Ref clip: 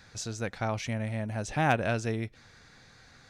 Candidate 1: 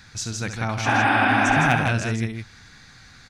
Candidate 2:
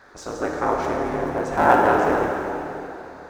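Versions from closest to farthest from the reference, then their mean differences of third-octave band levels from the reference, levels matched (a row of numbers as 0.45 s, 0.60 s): 1, 2; 5.5 dB, 9.5 dB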